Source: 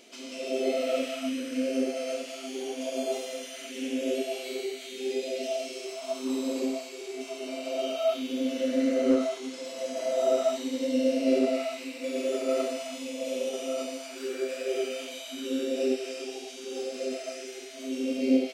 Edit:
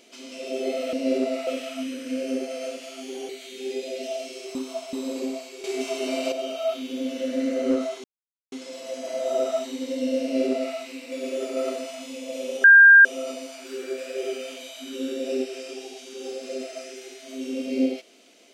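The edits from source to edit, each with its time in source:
2.75–4.69 cut
5.95–6.33 reverse
7.04–7.72 gain +8.5 dB
9.44 insert silence 0.48 s
11.14–11.68 copy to 0.93
13.56 add tone 1600 Hz -7.5 dBFS 0.41 s

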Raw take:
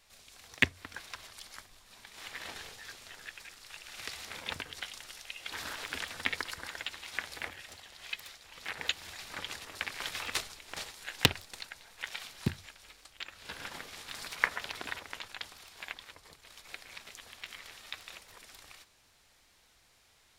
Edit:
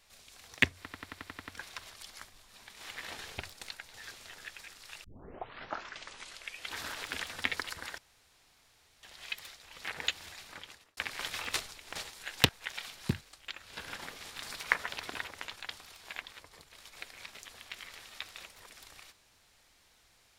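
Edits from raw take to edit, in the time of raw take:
0.79 stutter 0.09 s, 8 plays
3.85 tape start 1.67 s
6.79–7.84 room tone
8.92–9.78 fade out linear
11.3–11.86 move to 2.75
12.58–12.93 cut

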